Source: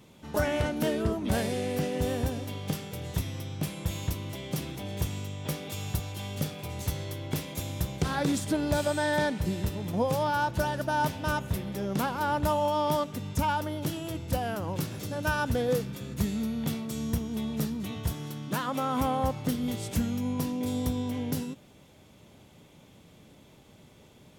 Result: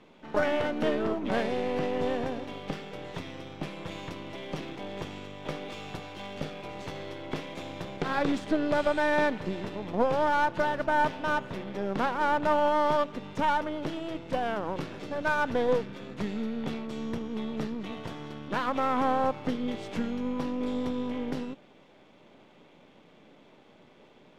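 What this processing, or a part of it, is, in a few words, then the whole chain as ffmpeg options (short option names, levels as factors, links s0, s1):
crystal radio: -af "highpass=260,lowpass=2800,aeval=exprs='if(lt(val(0),0),0.447*val(0),val(0))':c=same,volume=1.78"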